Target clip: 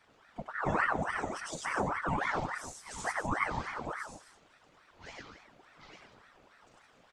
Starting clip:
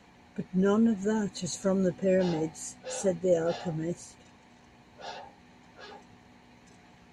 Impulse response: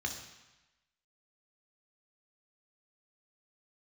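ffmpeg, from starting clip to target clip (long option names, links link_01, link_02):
-af "aecho=1:1:99.13|212.8|250.7:0.891|0.251|0.316,afftfilt=real='hypot(re,im)*cos(2*PI*random(0))':imag='hypot(re,im)*sin(2*PI*random(1))':win_size=512:overlap=0.75,aeval=exprs='val(0)*sin(2*PI*1000*n/s+1000*0.65/3.5*sin(2*PI*3.5*n/s))':channel_layout=same"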